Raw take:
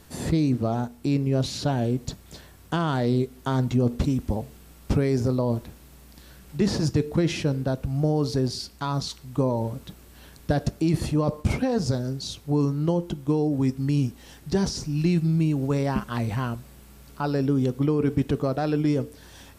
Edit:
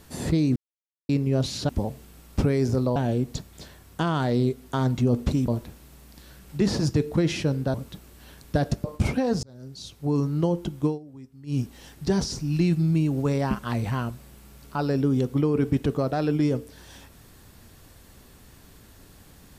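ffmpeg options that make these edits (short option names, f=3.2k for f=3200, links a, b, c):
-filter_complex "[0:a]asplit=11[a][b][c][d][e][f][g][h][i][j][k];[a]atrim=end=0.56,asetpts=PTS-STARTPTS,afade=t=out:st=0.556:d=0.004:c=hsin[l];[b]atrim=start=0.56:end=1.09,asetpts=PTS-STARTPTS,volume=0[m];[c]atrim=start=1.09:end=1.692,asetpts=PTS-STARTPTS,afade=t=in:d=0.004:c=hsin[n];[d]atrim=start=4.208:end=5.482[o];[e]atrim=start=1.688:end=4.212[p];[f]atrim=start=5.478:end=7.742[q];[g]atrim=start=9.688:end=10.792[r];[h]atrim=start=11.288:end=11.88,asetpts=PTS-STARTPTS,afade=t=out:st=0.588:d=0.004:c=hsin[s];[i]atrim=start=11.88:end=13.44,asetpts=PTS-STARTPTS,afade=t=in:d=0.84,afade=t=out:st=1.43:d=0.13:silence=0.0944061[t];[j]atrim=start=13.44:end=13.91,asetpts=PTS-STARTPTS,volume=-20.5dB[u];[k]atrim=start=13.91,asetpts=PTS-STARTPTS,afade=t=in:d=0.13:silence=0.0944061[v];[l][m][n]concat=n=3:v=0:a=1[w];[w][o]acrossfade=d=0.004:c1=hsin:c2=hsin[x];[x][p]acrossfade=d=0.004:c1=hsin:c2=hsin[y];[y][q]acrossfade=d=0.004:c1=hsin:c2=hsin[z];[z][r]acrossfade=d=0.004:c1=hsin:c2=hsin[aa];[s][t][u][v]concat=n=4:v=0:a=1[ab];[aa][ab]acrossfade=d=0.004:c1=hsin:c2=hsin"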